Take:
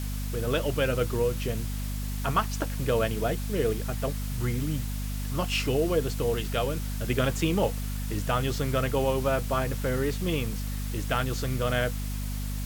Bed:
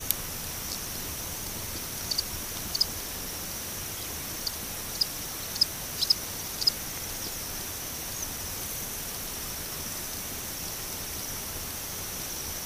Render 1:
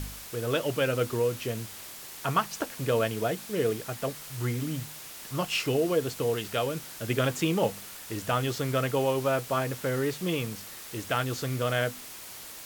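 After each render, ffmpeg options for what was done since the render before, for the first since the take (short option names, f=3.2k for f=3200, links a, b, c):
-af "bandreject=f=50:t=h:w=4,bandreject=f=100:t=h:w=4,bandreject=f=150:t=h:w=4,bandreject=f=200:t=h:w=4,bandreject=f=250:t=h:w=4"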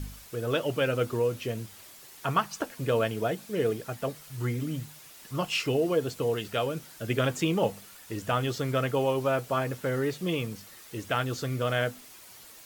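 -af "afftdn=nr=8:nf=-44"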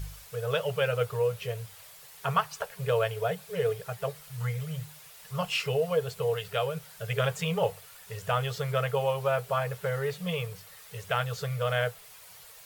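-af "afftfilt=real='re*(1-between(b*sr/4096,190,400))':imag='im*(1-between(b*sr/4096,190,400))':win_size=4096:overlap=0.75,adynamicequalizer=threshold=0.00158:dfrequency=6200:dqfactor=1.7:tfrequency=6200:tqfactor=1.7:attack=5:release=100:ratio=0.375:range=2.5:mode=cutabove:tftype=bell"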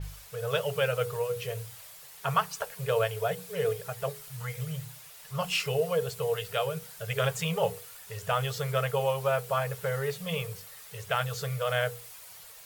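-af "bandreject=f=60:t=h:w=6,bandreject=f=120:t=h:w=6,bandreject=f=180:t=h:w=6,bandreject=f=240:t=h:w=6,bandreject=f=300:t=h:w=6,bandreject=f=360:t=h:w=6,bandreject=f=420:t=h:w=6,bandreject=f=480:t=h:w=6,adynamicequalizer=threshold=0.00355:dfrequency=5000:dqfactor=0.7:tfrequency=5000:tqfactor=0.7:attack=5:release=100:ratio=0.375:range=2.5:mode=boostabove:tftype=highshelf"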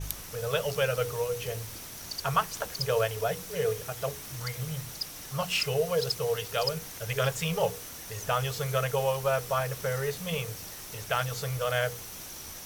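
-filter_complex "[1:a]volume=-8.5dB[a];[0:a][a]amix=inputs=2:normalize=0"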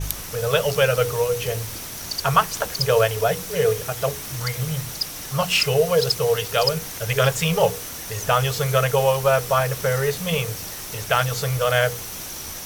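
-af "volume=9dB,alimiter=limit=-3dB:level=0:latency=1"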